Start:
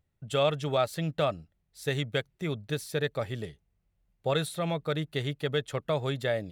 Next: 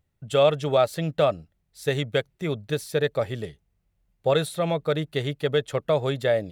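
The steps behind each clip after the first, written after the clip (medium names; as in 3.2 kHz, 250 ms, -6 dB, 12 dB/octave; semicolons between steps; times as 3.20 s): dynamic bell 530 Hz, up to +5 dB, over -39 dBFS, Q 1.2; trim +3 dB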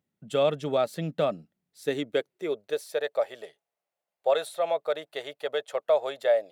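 high-pass sweep 210 Hz -> 630 Hz, 1.63–3.02 s; trim -6 dB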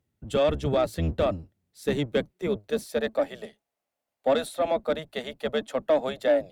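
octave divider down 1 oct, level +2 dB; Chebyshev shaper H 5 -25 dB, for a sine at -12 dBFS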